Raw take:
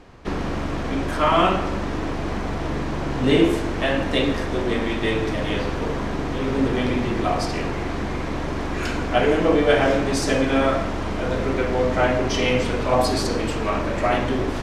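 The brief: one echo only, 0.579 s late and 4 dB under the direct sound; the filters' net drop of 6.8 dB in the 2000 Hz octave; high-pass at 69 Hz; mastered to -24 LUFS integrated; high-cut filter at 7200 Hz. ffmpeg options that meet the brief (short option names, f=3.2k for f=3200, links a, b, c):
-af "highpass=69,lowpass=7.2k,equalizer=f=2k:t=o:g=-9,aecho=1:1:579:0.631,volume=-2dB"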